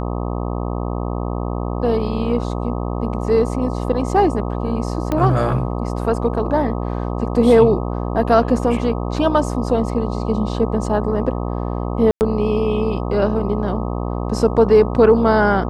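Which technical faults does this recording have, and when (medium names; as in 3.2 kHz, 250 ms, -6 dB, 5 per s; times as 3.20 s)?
buzz 60 Hz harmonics 21 -23 dBFS
5.12 s: pop -8 dBFS
12.11–12.21 s: dropout 99 ms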